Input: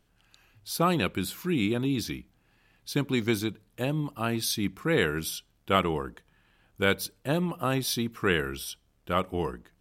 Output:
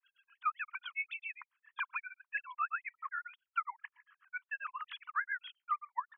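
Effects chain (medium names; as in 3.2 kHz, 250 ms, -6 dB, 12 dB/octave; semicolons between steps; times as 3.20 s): formants replaced by sine waves; low-pass 2.2 kHz 12 dB/octave; spectral noise reduction 9 dB; Chebyshev high-pass 980 Hz, order 6; compression 5:1, threshold -47 dBFS, peak gain reduction 21.5 dB; granular stretch 0.63×, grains 28 ms; granulator 119 ms, grains 7.4 per s, spray 66 ms, pitch spread up and down by 0 st; trim +16 dB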